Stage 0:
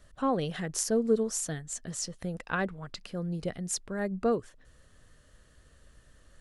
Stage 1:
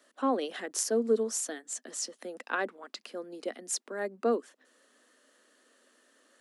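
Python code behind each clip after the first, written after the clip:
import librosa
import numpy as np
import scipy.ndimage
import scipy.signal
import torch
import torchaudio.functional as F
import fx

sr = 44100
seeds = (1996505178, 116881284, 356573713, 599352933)

y = scipy.signal.sosfilt(scipy.signal.butter(12, 230.0, 'highpass', fs=sr, output='sos'), x)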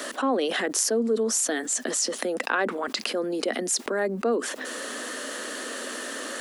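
y = fx.env_flatten(x, sr, amount_pct=70)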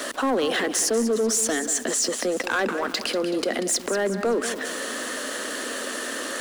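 y = fx.echo_feedback(x, sr, ms=189, feedback_pct=45, wet_db=-12.0)
y = fx.leveller(y, sr, passes=3)
y = F.gain(torch.from_numpy(y), -8.0).numpy()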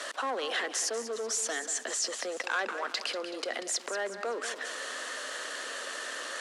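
y = fx.bandpass_edges(x, sr, low_hz=620.0, high_hz=7600.0)
y = F.gain(torch.from_numpy(y), -5.5).numpy()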